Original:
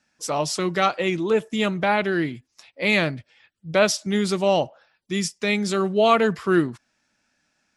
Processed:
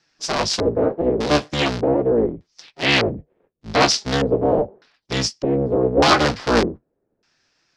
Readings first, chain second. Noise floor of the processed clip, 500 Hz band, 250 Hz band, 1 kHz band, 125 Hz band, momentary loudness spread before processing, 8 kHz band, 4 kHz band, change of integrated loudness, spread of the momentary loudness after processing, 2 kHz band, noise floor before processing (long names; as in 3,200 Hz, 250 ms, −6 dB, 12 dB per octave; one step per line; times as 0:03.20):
−73 dBFS, +3.0 dB, +2.0 dB, +2.5 dB, +4.0 dB, 8 LU, +3.0 dB, +6.5 dB, +3.0 dB, 9 LU, +1.5 dB, −73 dBFS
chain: sub-harmonics by changed cycles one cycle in 3, inverted
flanger 0.39 Hz, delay 5.7 ms, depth 8.2 ms, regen −52%
auto-filter low-pass square 0.83 Hz 470–5,000 Hz
level +5.5 dB